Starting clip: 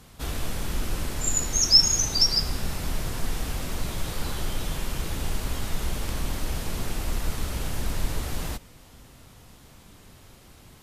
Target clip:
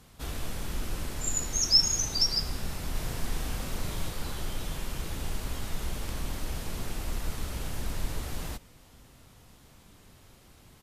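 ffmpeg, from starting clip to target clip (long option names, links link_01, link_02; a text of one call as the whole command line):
ffmpeg -i in.wav -filter_complex "[0:a]asplit=3[link_01][link_02][link_03];[link_01]afade=type=out:start_time=2.94:duration=0.02[link_04];[link_02]asplit=2[link_05][link_06];[link_06]adelay=37,volume=-3dB[link_07];[link_05][link_07]amix=inputs=2:normalize=0,afade=type=in:start_time=2.94:duration=0.02,afade=type=out:start_time=4.08:duration=0.02[link_08];[link_03]afade=type=in:start_time=4.08:duration=0.02[link_09];[link_04][link_08][link_09]amix=inputs=3:normalize=0,volume=-5dB" out.wav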